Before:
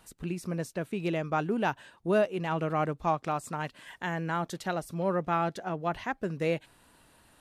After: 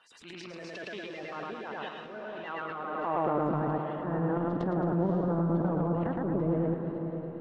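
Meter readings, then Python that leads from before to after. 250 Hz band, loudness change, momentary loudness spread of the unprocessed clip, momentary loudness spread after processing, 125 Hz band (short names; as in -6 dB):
+3.0 dB, 0.0 dB, 8 LU, 13 LU, +3.0 dB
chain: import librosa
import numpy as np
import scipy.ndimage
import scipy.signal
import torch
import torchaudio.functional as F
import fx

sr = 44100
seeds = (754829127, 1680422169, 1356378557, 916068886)

p1 = fx.spec_quant(x, sr, step_db=30)
p2 = scipy.signal.sosfilt(scipy.signal.butter(2, 4800.0, 'lowpass', fs=sr, output='sos'), p1)
p3 = fx.env_lowpass_down(p2, sr, base_hz=1000.0, full_db=-24.5)
p4 = fx.dynamic_eq(p3, sr, hz=2100.0, q=0.91, threshold_db=-46.0, ratio=4.0, max_db=-4)
p5 = fx.rider(p4, sr, range_db=4, speed_s=0.5)
p6 = p4 + F.gain(torch.from_numpy(p5), 2.0).numpy()
p7 = fx.echo_feedback(p6, sr, ms=108, feedback_pct=44, wet_db=-3.0)
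p8 = fx.level_steps(p7, sr, step_db=16)
p9 = fx.filter_sweep_bandpass(p8, sr, from_hz=3300.0, to_hz=210.0, start_s=2.78, end_s=3.56, q=0.77)
p10 = fx.transient(p9, sr, attack_db=-9, sustain_db=8)
p11 = p10 + fx.echo_diffused(p10, sr, ms=541, feedback_pct=42, wet_db=-7, dry=0)
y = F.gain(torch.from_numpy(p11), 6.5).numpy()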